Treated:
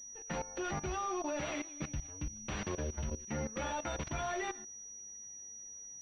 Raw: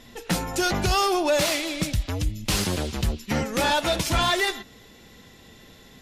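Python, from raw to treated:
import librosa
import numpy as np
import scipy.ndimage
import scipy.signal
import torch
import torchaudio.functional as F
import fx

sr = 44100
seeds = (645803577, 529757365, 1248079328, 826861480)

y = fx.stiff_resonator(x, sr, f0_hz=72.0, decay_s=0.23, stiffness=0.002)
y = fx.level_steps(y, sr, step_db=17)
y = fx.pwm(y, sr, carrier_hz=5800.0)
y = F.gain(torch.from_numpy(y), -2.0).numpy()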